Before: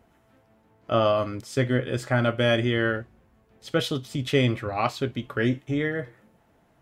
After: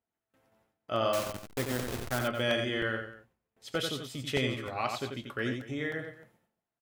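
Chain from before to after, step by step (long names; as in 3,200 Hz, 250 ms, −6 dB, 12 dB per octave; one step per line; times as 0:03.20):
0:01.13–0:02.19: hold until the input has moved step −22.5 dBFS
spectral tilt +1.5 dB per octave
noise gate with hold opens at −51 dBFS
on a send: multi-tap delay 89/233 ms −5.5/−16.5 dB
on the sum: regular buffer underruns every 0.31 s, samples 64, repeat, from 0:00.34
level −7.5 dB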